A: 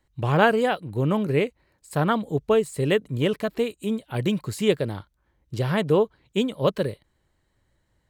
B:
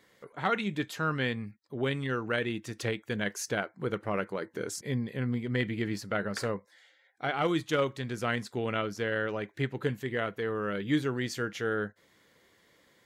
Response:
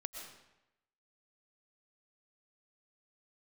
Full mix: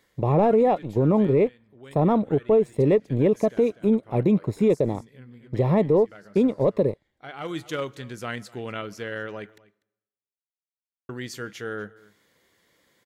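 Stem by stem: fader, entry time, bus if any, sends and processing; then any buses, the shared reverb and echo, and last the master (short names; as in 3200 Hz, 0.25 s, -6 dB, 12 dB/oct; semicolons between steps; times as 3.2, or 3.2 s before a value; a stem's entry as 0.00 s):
+2.5 dB, 0.00 s, no send, no echo send, low shelf 160 Hz -11 dB; sample leveller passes 2; running mean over 29 samples
-2.5 dB, 0.00 s, muted 9.58–11.09, send -21 dB, echo send -22 dB, auto duck -16 dB, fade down 0.55 s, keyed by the first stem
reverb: on, RT60 0.90 s, pre-delay 80 ms
echo: echo 0.245 s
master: high shelf 6400 Hz +5 dB; limiter -12 dBFS, peak gain reduction 7.5 dB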